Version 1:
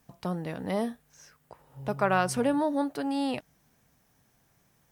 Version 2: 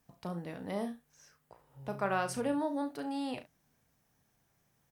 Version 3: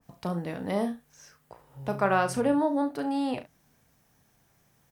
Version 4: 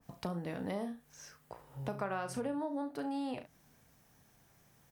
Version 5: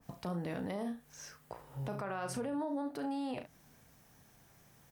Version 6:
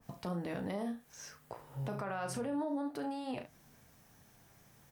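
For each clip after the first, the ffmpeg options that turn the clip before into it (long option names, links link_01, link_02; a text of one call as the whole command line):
ffmpeg -i in.wav -af "aecho=1:1:35|69:0.355|0.178,volume=-7.5dB" out.wav
ffmpeg -i in.wav -af "adynamicequalizer=threshold=0.00316:dfrequency=1900:dqfactor=0.7:tfrequency=1900:tqfactor=0.7:attack=5:release=100:ratio=0.375:range=3.5:mode=cutabove:tftype=highshelf,volume=8dB" out.wav
ffmpeg -i in.wav -af "acompressor=threshold=-36dB:ratio=4" out.wav
ffmpeg -i in.wav -af "alimiter=level_in=8.5dB:limit=-24dB:level=0:latency=1:release=29,volume=-8.5dB,volume=3dB" out.wav
ffmpeg -i in.wav -af "flanger=delay=8.8:depth=1.3:regen=-64:speed=0.58:shape=sinusoidal,volume=4.5dB" out.wav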